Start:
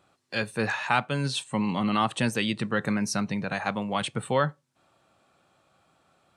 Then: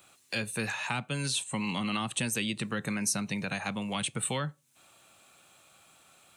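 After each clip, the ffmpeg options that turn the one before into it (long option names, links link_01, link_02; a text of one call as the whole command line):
ffmpeg -i in.wav -filter_complex "[0:a]acrossover=split=310|1000[link_01][link_02][link_03];[link_01]acompressor=threshold=-32dB:ratio=4[link_04];[link_02]acompressor=threshold=-42dB:ratio=4[link_05];[link_03]acompressor=threshold=-43dB:ratio=4[link_06];[link_04][link_05][link_06]amix=inputs=3:normalize=0,superequalizer=12b=1.41:14b=0.631,crystalizer=i=6.5:c=0,volume=-1dB" out.wav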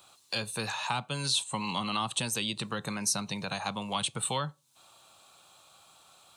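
ffmpeg -i in.wav -af "equalizer=frequency=250:width_type=o:width=1:gain=-4,equalizer=frequency=1000:width_type=o:width=1:gain=8,equalizer=frequency=2000:width_type=o:width=1:gain=-8,equalizer=frequency=4000:width_type=o:width=1:gain=8,volume=-1dB" out.wav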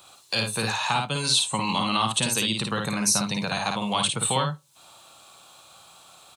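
ffmpeg -i in.wav -af "aecho=1:1:54|73:0.631|0.158,volume=6dB" out.wav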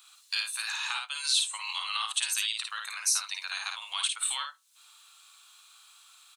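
ffmpeg -i in.wav -af "highpass=frequency=1300:width=0.5412,highpass=frequency=1300:width=1.3066,volume=-4dB" out.wav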